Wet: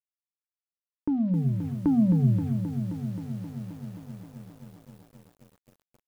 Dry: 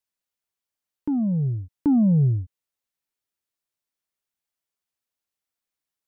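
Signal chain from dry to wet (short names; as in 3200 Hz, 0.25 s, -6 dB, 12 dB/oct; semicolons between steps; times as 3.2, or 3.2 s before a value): notches 50/100/150/200/250 Hz; in parallel at +2 dB: compressor 20:1, threshold -32 dBFS, peak gain reduction 17.5 dB; on the sum: bit-crush 8-bit; air absorption 330 m; lo-fi delay 0.264 s, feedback 80%, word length 8-bit, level -8.5 dB; gain -4 dB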